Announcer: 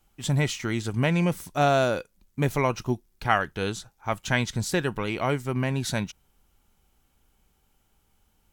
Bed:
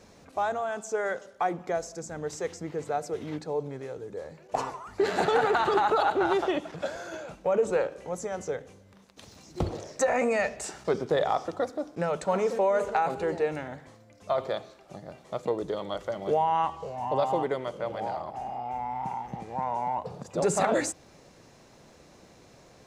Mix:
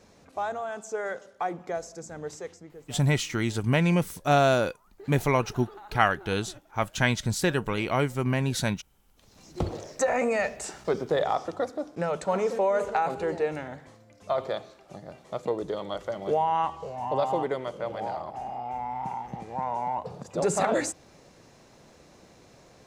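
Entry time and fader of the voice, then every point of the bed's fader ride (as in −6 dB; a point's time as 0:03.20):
2.70 s, +0.5 dB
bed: 0:02.29 −2.5 dB
0:03.15 −22.5 dB
0:09.03 −22.5 dB
0:09.45 0 dB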